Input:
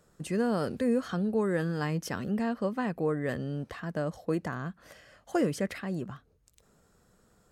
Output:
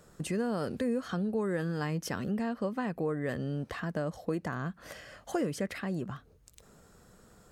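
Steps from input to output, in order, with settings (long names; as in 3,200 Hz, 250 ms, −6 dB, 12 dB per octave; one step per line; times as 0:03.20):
downward compressor 2 to 1, threshold −43 dBFS, peak gain reduction 11.5 dB
level +6.5 dB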